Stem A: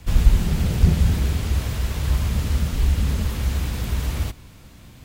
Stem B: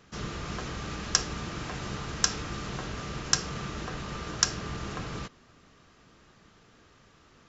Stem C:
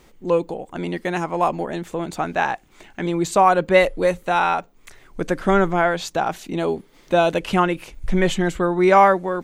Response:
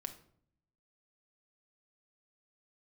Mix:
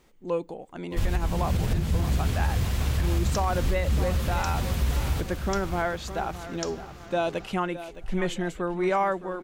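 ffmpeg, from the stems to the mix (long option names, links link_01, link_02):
-filter_complex "[0:a]agate=range=-33dB:threshold=-42dB:ratio=3:detection=peak,alimiter=limit=-11dB:level=0:latency=1:release=388,flanger=delay=7.9:depth=8.4:regen=-51:speed=1.1:shape=sinusoidal,adelay=900,volume=2dB,asplit=2[link_01][link_02];[link_02]volume=-8.5dB[link_03];[1:a]adelay=2200,volume=-11dB[link_04];[2:a]volume=-9dB,asplit=2[link_05][link_06];[link_06]volume=-14dB[link_07];[link_03][link_07]amix=inputs=2:normalize=0,aecho=0:1:614|1228|1842|2456|3070|3684:1|0.4|0.16|0.064|0.0256|0.0102[link_08];[link_01][link_04][link_05][link_08]amix=inputs=4:normalize=0,alimiter=limit=-16dB:level=0:latency=1:release=67"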